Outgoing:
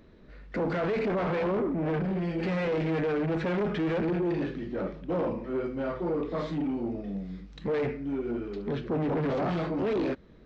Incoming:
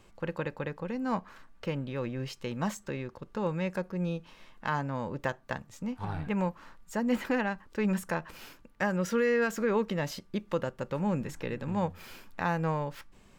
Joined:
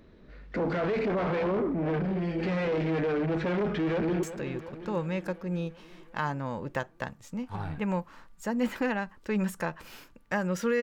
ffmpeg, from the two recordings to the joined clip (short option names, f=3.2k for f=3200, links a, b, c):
-filter_complex "[0:a]apad=whole_dur=10.82,atrim=end=10.82,atrim=end=4.232[a];[1:a]atrim=start=2.718:end=9.31[b];[a][b]acrossfade=d=0.004:c1=hsin:c2=hsin,asplit=2[c][d];[d]afade=t=in:st=3.73:d=0.01,afade=t=out:st=4.23:d=0.01,aecho=0:1:360|720|1080|1440|1800|2160|2520|2880:0.266073|0.172947|0.112416|0.0730702|0.0474956|0.0308721|0.0200669|0.0130435[e];[c][e]amix=inputs=2:normalize=0"